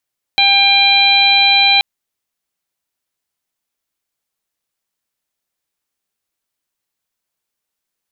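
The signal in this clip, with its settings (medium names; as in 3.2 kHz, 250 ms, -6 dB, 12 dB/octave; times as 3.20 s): steady additive tone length 1.43 s, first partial 797 Hz, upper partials -13/3.5/-1/4.5 dB, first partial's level -16 dB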